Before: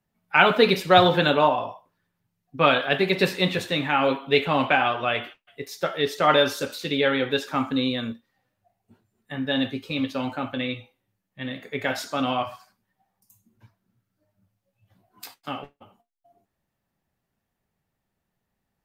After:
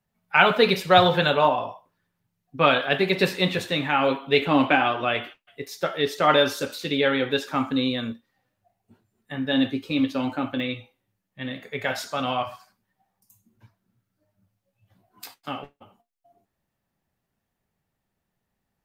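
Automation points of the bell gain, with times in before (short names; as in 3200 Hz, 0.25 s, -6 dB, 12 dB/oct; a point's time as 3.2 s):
bell 300 Hz 0.36 oct
-9 dB
from 1.45 s -0.5 dB
from 4.42 s +10 dB
from 5.17 s +1 dB
from 9.53 s +7.5 dB
from 10.6 s 0 dB
from 11.63 s -10.5 dB
from 12.47 s 0 dB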